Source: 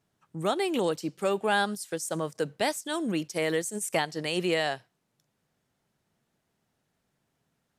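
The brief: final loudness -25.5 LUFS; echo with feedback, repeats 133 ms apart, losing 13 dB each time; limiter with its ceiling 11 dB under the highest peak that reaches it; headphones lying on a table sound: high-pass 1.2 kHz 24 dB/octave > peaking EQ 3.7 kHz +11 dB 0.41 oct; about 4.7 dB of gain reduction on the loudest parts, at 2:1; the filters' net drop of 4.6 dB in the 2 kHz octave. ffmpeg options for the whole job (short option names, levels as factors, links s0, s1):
-af "equalizer=f=2000:t=o:g=-6.5,acompressor=threshold=0.0282:ratio=2,alimiter=level_in=1.78:limit=0.0631:level=0:latency=1,volume=0.562,highpass=f=1200:w=0.5412,highpass=f=1200:w=1.3066,equalizer=f=3700:t=o:w=0.41:g=11,aecho=1:1:133|266|399:0.224|0.0493|0.0108,volume=6.68"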